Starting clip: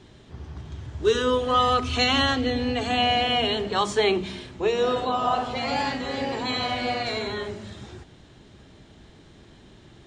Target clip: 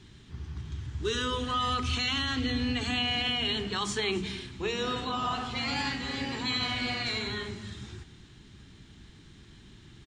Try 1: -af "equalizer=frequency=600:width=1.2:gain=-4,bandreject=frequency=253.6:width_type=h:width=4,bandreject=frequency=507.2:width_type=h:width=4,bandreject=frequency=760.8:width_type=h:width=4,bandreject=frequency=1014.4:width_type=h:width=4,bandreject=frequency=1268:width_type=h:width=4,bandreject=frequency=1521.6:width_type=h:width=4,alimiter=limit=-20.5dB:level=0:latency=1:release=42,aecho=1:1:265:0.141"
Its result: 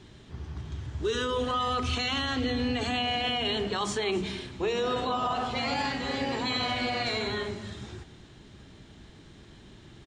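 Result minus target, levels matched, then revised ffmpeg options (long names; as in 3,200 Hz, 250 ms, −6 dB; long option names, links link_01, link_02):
500 Hz band +4.5 dB
-af "equalizer=frequency=600:width=1.2:gain=-16,bandreject=frequency=253.6:width_type=h:width=4,bandreject=frequency=507.2:width_type=h:width=4,bandreject=frequency=760.8:width_type=h:width=4,bandreject=frequency=1014.4:width_type=h:width=4,bandreject=frequency=1268:width_type=h:width=4,bandreject=frequency=1521.6:width_type=h:width=4,alimiter=limit=-20.5dB:level=0:latency=1:release=42,aecho=1:1:265:0.141"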